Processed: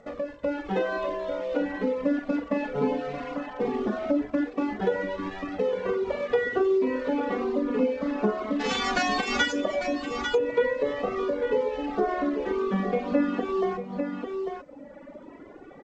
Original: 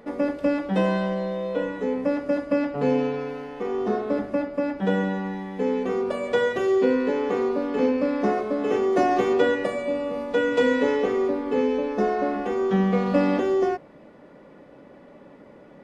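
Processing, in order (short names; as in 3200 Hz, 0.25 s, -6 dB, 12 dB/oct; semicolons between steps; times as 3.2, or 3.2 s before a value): 8.59–9.52 spectral whitening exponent 0.3; in parallel at -9 dB: bit-crush 5-bit; on the sum: flange 0.18 Hz, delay 1.5 ms, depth 3.3 ms, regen +11%; Bessel low-pass 2600 Hz, order 2; on a send: tapped delay 45/48/92/274/846 ms -9/-14/-12.5/-18/-11.5 dB; on the sum: compressor 2:1, threshold -35 dBFS, peak gain reduction 11 dB; reverb removal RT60 1.4 s; AGC gain up to 8 dB; G.722 64 kbps 16000 Hz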